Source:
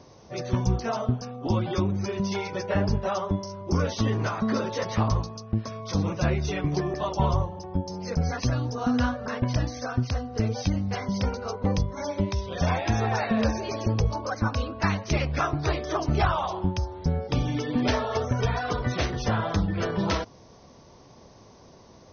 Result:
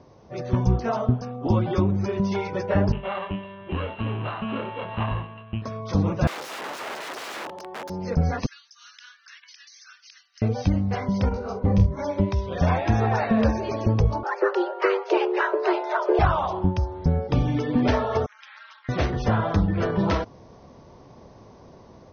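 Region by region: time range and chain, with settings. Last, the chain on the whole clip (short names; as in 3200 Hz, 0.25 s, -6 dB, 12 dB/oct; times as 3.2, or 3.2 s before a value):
2.92–5.62 sample sorter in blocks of 16 samples + rippled Chebyshev low-pass 4100 Hz, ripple 9 dB + doubler 26 ms -6 dB
6.27–7.9 high shelf 4500 Hz +6.5 dB + wrapped overs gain 28.5 dB + HPF 380 Hz
8.46–10.42 Bessel high-pass 2900 Hz, order 8 + high shelf 4100 Hz +8.5 dB + compressor 10:1, threshold -39 dBFS
11.29–11.99 low shelf 250 Hz +7.5 dB + doubler 46 ms -10.5 dB + detuned doubles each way 34 cents
14.23–16.19 LPF 4800 Hz 24 dB/oct + frequency shift +290 Hz
18.26–18.89 Bessel high-pass 2300 Hz, order 6 + ring modulator 110 Hz + air absorption 150 m
whole clip: AGC gain up to 4 dB; LPF 1700 Hz 6 dB/oct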